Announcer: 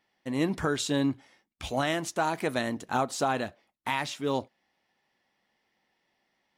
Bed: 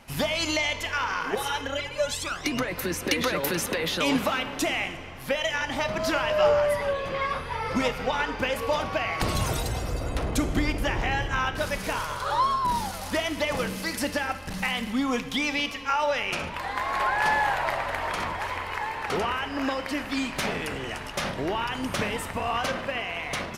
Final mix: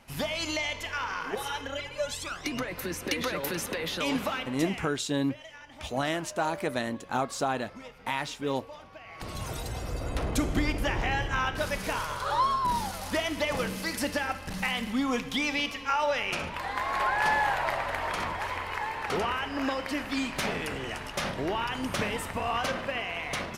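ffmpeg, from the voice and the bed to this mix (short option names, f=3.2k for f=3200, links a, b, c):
-filter_complex "[0:a]adelay=4200,volume=-1.5dB[a];[1:a]volume=13dB,afade=t=out:st=4.32:d=0.64:silence=0.177828,afade=t=in:st=9.03:d=1.2:silence=0.125893[b];[a][b]amix=inputs=2:normalize=0"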